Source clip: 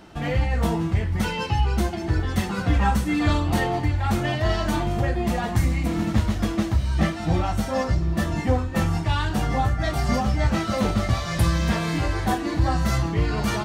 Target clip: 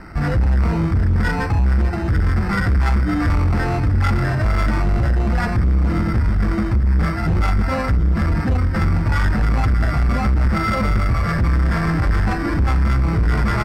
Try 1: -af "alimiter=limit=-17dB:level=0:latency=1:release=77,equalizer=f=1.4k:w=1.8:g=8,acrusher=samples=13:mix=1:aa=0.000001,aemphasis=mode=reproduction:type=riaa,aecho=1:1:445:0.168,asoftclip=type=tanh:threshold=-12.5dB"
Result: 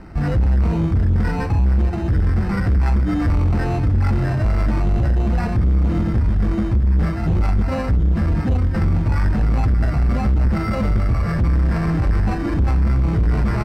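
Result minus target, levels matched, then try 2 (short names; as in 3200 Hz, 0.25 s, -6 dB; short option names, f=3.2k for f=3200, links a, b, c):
1000 Hz band -4.5 dB
-af "alimiter=limit=-17dB:level=0:latency=1:release=77,equalizer=f=1.4k:w=1.8:g=18,acrusher=samples=13:mix=1:aa=0.000001,aemphasis=mode=reproduction:type=riaa,aecho=1:1:445:0.168,asoftclip=type=tanh:threshold=-12.5dB"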